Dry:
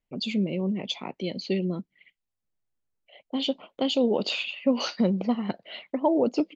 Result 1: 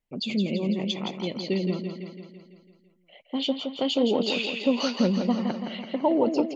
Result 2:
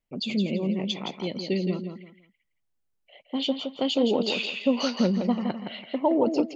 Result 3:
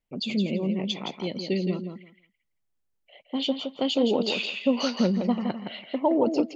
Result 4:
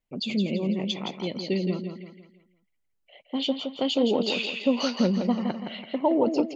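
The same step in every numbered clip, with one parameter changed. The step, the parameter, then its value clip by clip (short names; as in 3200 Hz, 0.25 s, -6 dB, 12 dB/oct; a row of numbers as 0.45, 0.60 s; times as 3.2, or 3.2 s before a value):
feedback echo, feedback: 58, 25, 16, 39%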